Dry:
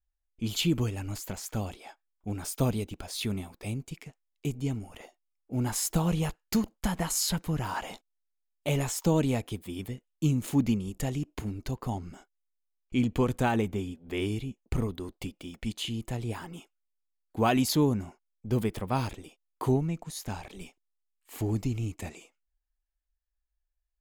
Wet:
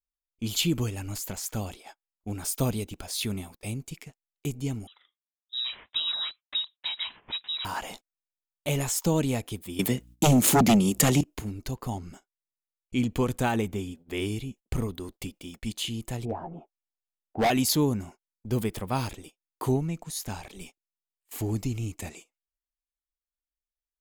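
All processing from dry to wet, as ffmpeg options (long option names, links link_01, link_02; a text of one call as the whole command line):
ffmpeg -i in.wav -filter_complex "[0:a]asettb=1/sr,asplit=3[link_01][link_02][link_03];[link_01]atrim=end=4.874[link_04];[link_02]atrim=start=4.87:end=7.65,asetpts=PTS-STARTPTS,afade=type=in:duration=0.004:curve=qsin,afade=type=out:start_time=2.776:duration=0.004:curve=qsin,highpass=79,equalizer=frequency=270:width=0.32:gain=-7,lowpass=frequency=3400:width_type=q:width=0.5098,lowpass=frequency=3400:width_type=q:width=0.6013,lowpass=frequency=3400:width_type=q:width=0.9,lowpass=frequency=3400:width_type=q:width=2.563,afreqshift=-4000[link_05];[link_03]atrim=start=7.646[link_06];[link_04][link_05]acrossfade=duration=0.004:curve1=hsin:curve2=qsin[link_07];[link_07][link_06]acrossfade=duration=0.004:curve1=qsin:curve2=hsin,asettb=1/sr,asplit=3[link_08][link_09][link_10];[link_08]atrim=end=9.794[link_11];[link_09]atrim=start=9.79:end=11.21,asetpts=PTS-STARTPTS,afade=type=in:duration=0.004:curve=qsin,afade=type=out:start_time=1.416:duration=0.004:curve=qsin,highpass=frequency=140:width=0.5412,highpass=frequency=140:width=1.3066,aeval=exprs='0.178*sin(PI/2*3.16*val(0)/0.178)':channel_layout=same,aeval=exprs='val(0)+0.00251*(sin(2*PI*60*n/s)+sin(2*PI*2*60*n/s)/2+sin(2*PI*3*60*n/s)/3+sin(2*PI*4*60*n/s)/4+sin(2*PI*5*60*n/s)/5)':channel_layout=same[link_12];[link_10]atrim=start=11.206[link_13];[link_11][link_12]acrossfade=duration=0.004:curve1=hsin:curve2=qsin[link_14];[link_14][link_13]acrossfade=duration=0.004:curve1=qsin:curve2=hsin,asettb=1/sr,asplit=3[link_15][link_16][link_17];[link_15]atrim=end=16.254[link_18];[link_16]atrim=start=16.25:end=17.5,asetpts=PTS-STARTPTS,afade=type=in:duration=0.004:curve=qsin,afade=type=out:start_time=1.246:duration=0.004:curve=qsin,lowpass=frequency=710:width_type=q:width=4.3,volume=21.5dB,asoftclip=hard,volume=-21.5dB,asplit=2[link_19][link_20];[link_20]adelay=13,volume=-8dB[link_21];[link_19][link_21]amix=inputs=2:normalize=0,atrim=end_sample=55125[link_22];[link_17]atrim=start=17.496[link_23];[link_18][link_22]acrossfade=duration=0.004:curve1=hsin:curve2=qsin[link_24];[link_24][link_23]acrossfade=duration=0.004:curve1=qsin:curve2=hsin,highshelf=frequency=4200:gain=7,agate=range=-16dB:threshold=-46dB:ratio=16:detection=peak" out.wav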